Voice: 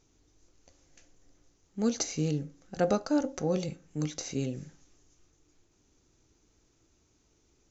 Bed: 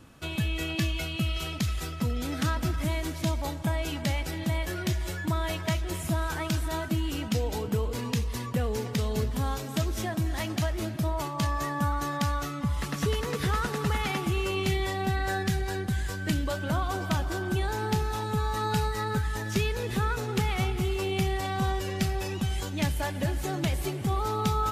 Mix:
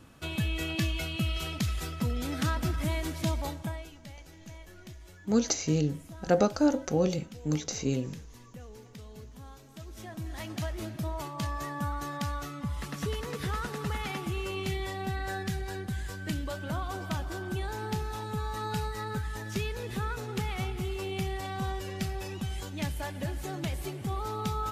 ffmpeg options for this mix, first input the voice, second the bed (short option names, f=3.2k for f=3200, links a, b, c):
-filter_complex "[0:a]adelay=3500,volume=3dB[a];[1:a]volume=11.5dB,afade=t=out:st=3.4:d=0.51:silence=0.141254,afade=t=in:st=9.77:d=0.91:silence=0.223872[b];[a][b]amix=inputs=2:normalize=0"